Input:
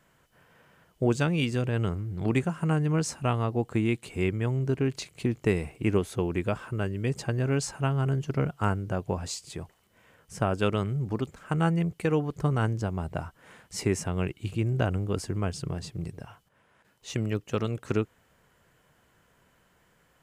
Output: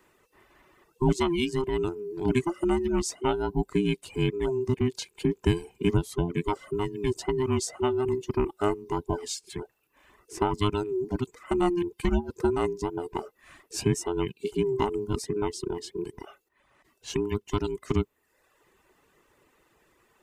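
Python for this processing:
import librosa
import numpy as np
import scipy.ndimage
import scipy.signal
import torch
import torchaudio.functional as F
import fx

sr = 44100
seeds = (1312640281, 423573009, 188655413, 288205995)

y = fx.band_invert(x, sr, width_hz=500)
y = fx.dynamic_eq(y, sr, hz=1600.0, q=1.6, threshold_db=-48.0, ratio=4.0, max_db=-6)
y = fx.dereverb_blind(y, sr, rt60_s=0.77)
y = F.gain(torch.from_numpy(y), 2.0).numpy()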